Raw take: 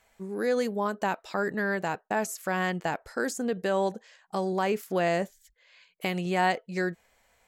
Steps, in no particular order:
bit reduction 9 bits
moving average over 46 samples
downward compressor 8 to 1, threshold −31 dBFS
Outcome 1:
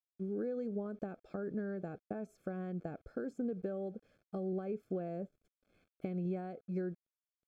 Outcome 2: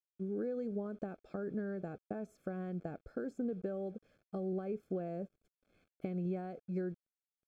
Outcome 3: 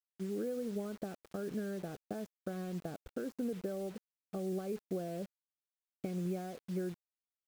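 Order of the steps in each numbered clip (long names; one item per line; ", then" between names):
bit reduction, then downward compressor, then moving average
downward compressor, then bit reduction, then moving average
downward compressor, then moving average, then bit reduction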